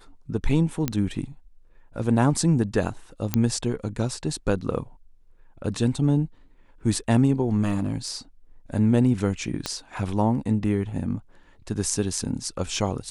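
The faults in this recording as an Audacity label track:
0.880000	0.880000	click −9 dBFS
3.340000	3.340000	click −7 dBFS
7.630000	8.080000	clipping −18 dBFS
9.660000	9.660000	click −12 dBFS

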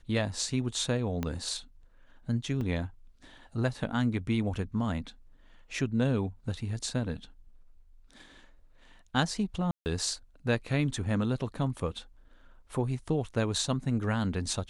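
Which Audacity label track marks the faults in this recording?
1.230000	1.230000	click −18 dBFS
2.610000	2.610000	drop-out 3.2 ms
9.710000	9.860000	drop-out 149 ms

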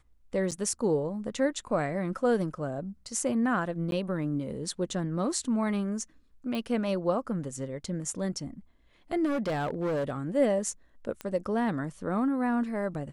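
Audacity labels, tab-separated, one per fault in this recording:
0.510000	0.520000	drop-out 7.7 ms
3.910000	3.920000	drop-out 12 ms
6.550000	6.550000	click
9.250000	10.180000	clipping −26 dBFS
11.210000	11.210000	click −21 dBFS

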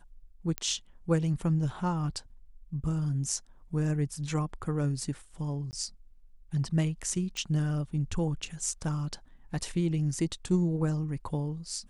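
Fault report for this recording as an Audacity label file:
0.580000	0.580000	click −15 dBFS
5.710000	5.730000	drop-out 19 ms
7.370000	7.370000	click −23 dBFS

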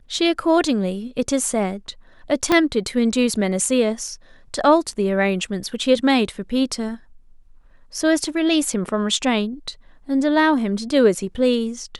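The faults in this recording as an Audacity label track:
2.520000	2.520000	click −4 dBFS

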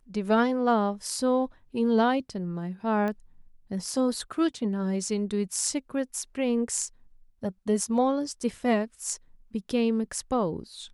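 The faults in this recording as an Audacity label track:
3.080000	3.080000	click −20 dBFS

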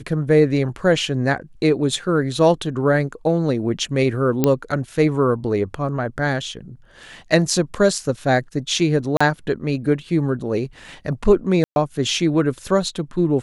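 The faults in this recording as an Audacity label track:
4.440000	4.440000	click −3 dBFS
9.170000	9.210000	drop-out 35 ms
11.640000	11.760000	drop-out 121 ms

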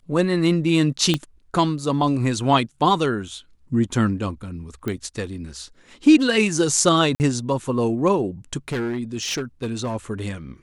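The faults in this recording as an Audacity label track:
1.140000	1.140000	click −7 dBFS
4.880000	4.880000	click −14 dBFS
7.150000	7.200000	drop-out 49 ms
8.680000	9.950000	clipping −21 dBFS

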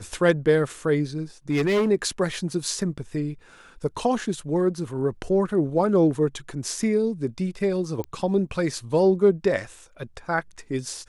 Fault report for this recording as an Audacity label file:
1.500000	1.900000	clipping −18 dBFS
8.040000	8.040000	click −19 dBFS

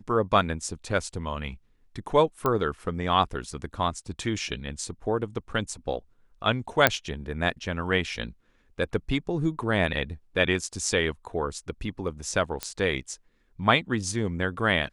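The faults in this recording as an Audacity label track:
2.460000	2.460000	click −12 dBFS
6.870000	6.870000	click −2 dBFS
12.630000	12.630000	click −12 dBFS

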